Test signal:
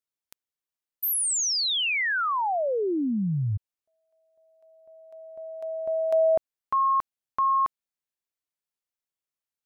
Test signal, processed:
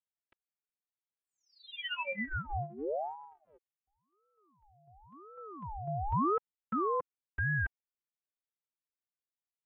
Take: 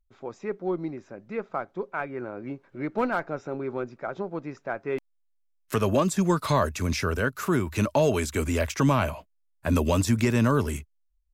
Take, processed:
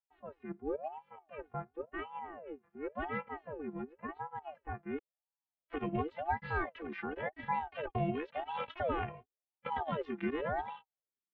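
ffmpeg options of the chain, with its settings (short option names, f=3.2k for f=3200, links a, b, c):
-af "afftfilt=real='hypot(re,im)*cos(PI*b)':imag='0':win_size=512:overlap=0.75,highpass=f=260:t=q:w=0.5412,highpass=f=260:t=q:w=1.307,lowpass=f=2.9k:t=q:w=0.5176,lowpass=f=2.9k:t=q:w=0.7071,lowpass=f=2.9k:t=q:w=1.932,afreqshift=-270,aeval=exprs='val(0)*sin(2*PI*590*n/s+590*0.55/0.93*sin(2*PI*0.93*n/s))':c=same,volume=-4dB"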